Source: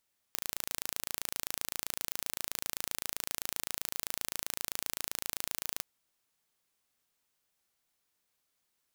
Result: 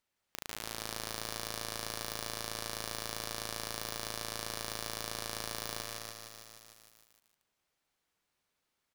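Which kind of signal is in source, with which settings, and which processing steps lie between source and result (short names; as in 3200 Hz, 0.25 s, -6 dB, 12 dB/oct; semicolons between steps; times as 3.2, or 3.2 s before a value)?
pulse train 27.7/s, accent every 0, -7 dBFS 5.47 s
LPF 3400 Hz 6 dB/oct; loudspeakers at several distances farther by 56 m -3 dB, 99 m -4 dB; lo-fi delay 0.153 s, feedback 80%, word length 8-bit, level -7 dB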